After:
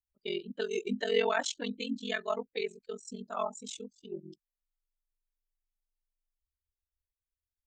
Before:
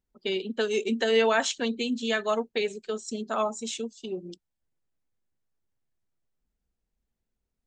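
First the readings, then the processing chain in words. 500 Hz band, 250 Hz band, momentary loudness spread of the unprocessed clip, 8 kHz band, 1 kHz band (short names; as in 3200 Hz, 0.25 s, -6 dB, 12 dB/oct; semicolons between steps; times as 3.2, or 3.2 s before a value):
-6.5 dB, -7.5 dB, 12 LU, -7.0 dB, -6.0 dB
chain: per-bin expansion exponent 1.5; ring modulator 22 Hz; gain -1.5 dB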